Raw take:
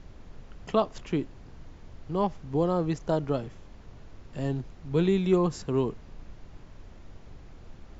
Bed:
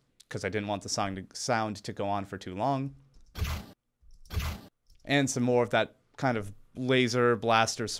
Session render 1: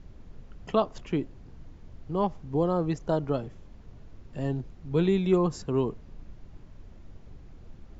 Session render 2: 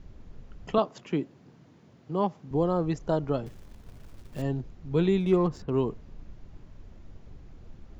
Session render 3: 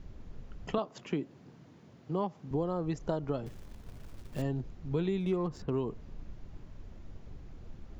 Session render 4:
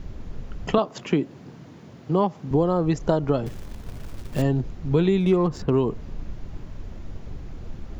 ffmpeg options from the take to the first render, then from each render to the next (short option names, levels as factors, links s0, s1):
-af "afftdn=nr=6:nf=-49"
-filter_complex "[0:a]asettb=1/sr,asplit=3[s0][s1][s2];[s0]atrim=end=0.784[s3];[s1]atrim=start=0.78:end=2.51,asetpts=PTS-STARTPTS,afade=t=in:d=0.004:c=qsin,afade=t=out:st=1.726:d=0.004:c=qsin,highpass=f=130:w=0.5412,highpass=f=130:w=1.3066[s4];[s2]atrim=start=2.506[s5];[s3][s4]acrossfade=d=0.004:c1=hsin:c2=qsin[s6];[s6][s5]acrossfade=d=0.004:c1=qsin:c2=hsin,asettb=1/sr,asplit=3[s7][s8][s9];[s7]atrim=end=3.464[s10];[s8]atrim=start=3.46:end=4.42,asetpts=PTS-STARTPTS,afade=t=in:d=0.004:c=qsin,afade=t=out:st=0.956:d=0.004:c=qsin,acrusher=bits=4:mode=log:mix=0:aa=0.000001[s11];[s9]atrim=start=4.416[s12];[s10][s11]acrossfade=d=0.004:c1=hsin:c2=qsin[s13];[s13][s12]acrossfade=d=0.004:c1=qsin:c2=hsin,asettb=1/sr,asplit=3[s14][s15][s16];[s14]atrim=end=5.204[s17];[s15]atrim=start=5.2:end=5.72,asetpts=PTS-STARTPTS,afade=t=in:d=0.004:c=qsin,afade=t=out:st=0.516:d=0.004:c=qsin,adynamicsmooth=sensitivity=8:basefreq=2700[s18];[s16]atrim=start=5.716[s19];[s17][s18]acrossfade=d=0.004:c1=hsin:c2=qsin[s20];[s20][s19]acrossfade=d=0.004:c1=qsin:c2=hsin"
-af "acompressor=threshold=0.0355:ratio=4"
-af "volume=3.76"